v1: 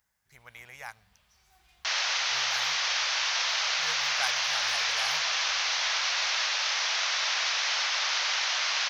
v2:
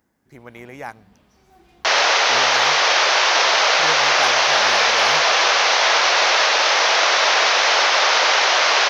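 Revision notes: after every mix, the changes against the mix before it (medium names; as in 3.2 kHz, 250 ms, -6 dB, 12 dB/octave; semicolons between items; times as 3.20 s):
second sound +8.0 dB; master: remove amplifier tone stack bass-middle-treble 10-0-10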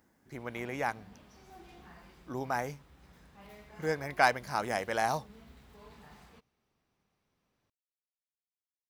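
second sound: muted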